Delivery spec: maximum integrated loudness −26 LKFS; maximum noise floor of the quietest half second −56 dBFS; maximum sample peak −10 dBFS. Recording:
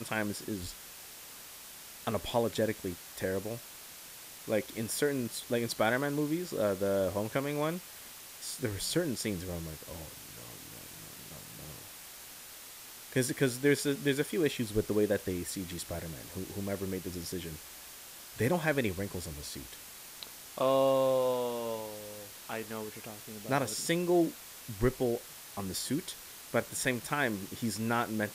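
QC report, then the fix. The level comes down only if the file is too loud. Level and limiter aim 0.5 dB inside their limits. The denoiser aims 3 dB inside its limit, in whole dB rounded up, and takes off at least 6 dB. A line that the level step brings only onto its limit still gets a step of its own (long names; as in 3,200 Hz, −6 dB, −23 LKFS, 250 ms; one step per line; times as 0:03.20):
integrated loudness −33.0 LKFS: in spec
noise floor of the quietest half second −49 dBFS: out of spec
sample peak −14.5 dBFS: in spec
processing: broadband denoise 10 dB, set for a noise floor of −49 dBFS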